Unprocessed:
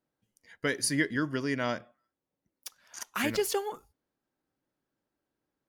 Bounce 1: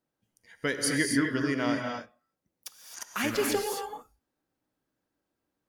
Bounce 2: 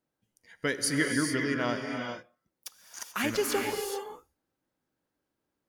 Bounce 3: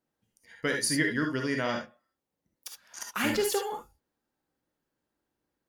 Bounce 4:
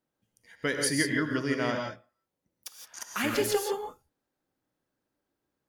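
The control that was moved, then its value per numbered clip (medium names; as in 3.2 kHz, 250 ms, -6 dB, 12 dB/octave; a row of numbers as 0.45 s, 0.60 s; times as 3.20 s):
gated-style reverb, gate: 290 ms, 460 ms, 90 ms, 190 ms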